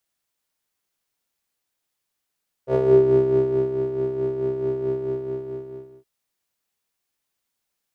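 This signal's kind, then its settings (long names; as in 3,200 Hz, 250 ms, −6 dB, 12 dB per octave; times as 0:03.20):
subtractive patch with tremolo C3, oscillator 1 square, interval +12 semitones, oscillator 2 level −11 dB, sub −7.5 dB, filter bandpass, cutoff 360 Hz, Q 7, filter envelope 0.5 octaves, filter decay 0.39 s, filter sustain 5%, attack 77 ms, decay 1.04 s, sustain −10 dB, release 1.15 s, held 2.22 s, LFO 4.6 Hz, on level 6 dB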